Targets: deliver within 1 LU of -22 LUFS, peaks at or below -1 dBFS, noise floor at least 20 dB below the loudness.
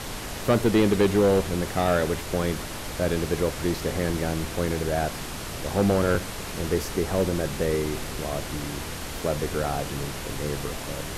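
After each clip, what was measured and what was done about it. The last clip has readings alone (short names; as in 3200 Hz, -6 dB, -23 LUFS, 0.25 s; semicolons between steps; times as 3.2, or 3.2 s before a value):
clipped 0.7%; flat tops at -14.5 dBFS; noise floor -35 dBFS; noise floor target -46 dBFS; loudness -26.0 LUFS; peak -14.5 dBFS; loudness target -22.0 LUFS
-> clip repair -14.5 dBFS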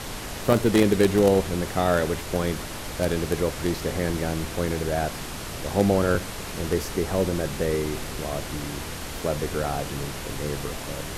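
clipped 0.0%; noise floor -35 dBFS; noise floor target -46 dBFS
-> noise print and reduce 11 dB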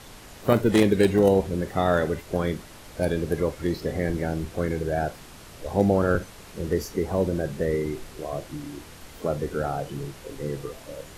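noise floor -45 dBFS; noise floor target -46 dBFS
-> noise print and reduce 6 dB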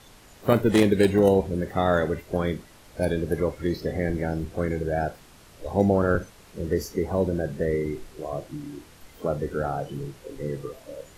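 noise floor -51 dBFS; loudness -26.0 LUFS; peak -5.5 dBFS; loudness target -22.0 LUFS
-> gain +4 dB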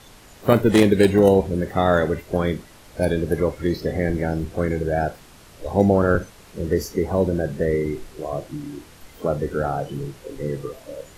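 loudness -22.0 LUFS; peak -1.5 dBFS; noise floor -47 dBFS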